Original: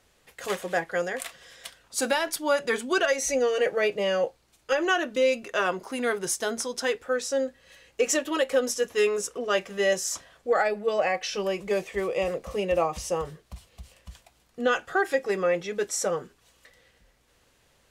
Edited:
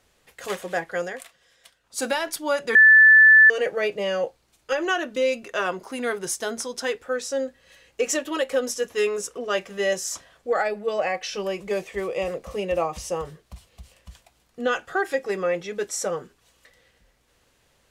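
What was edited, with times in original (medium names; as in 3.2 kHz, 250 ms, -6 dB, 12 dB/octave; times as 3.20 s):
1.06–2.03 s: dip -11 dB, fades 0.21 s
2.75–3.50 s: bleep 1.75 kHz -8.5 dBFS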